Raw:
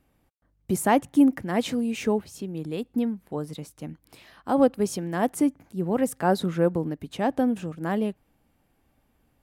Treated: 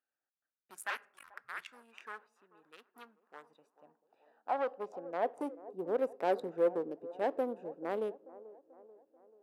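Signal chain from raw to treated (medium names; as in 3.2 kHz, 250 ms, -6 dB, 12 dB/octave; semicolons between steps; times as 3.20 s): local Wiener filter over 41 samples; bass shelf 170 Hz -3.5 dB; 0.90–1.72 s: frequency shift -310 Hz; on a send at -21.5 dB: reverberation RT60 0.55 s, pre-delay 11 ms; on the sum: saturation -19.5 dBFS, distortion -11 dB; feedback echo behind a band-pass 437 ms, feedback 52%, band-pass 530 Hz, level -17 dB; high-pass sweep 1.4 kHz -> 460 Hz, 2.87–5.71 s; 3.70–5.40 s: peaking EQ 11 kHz -13.5 dB 1.4 oct; trim -7 dB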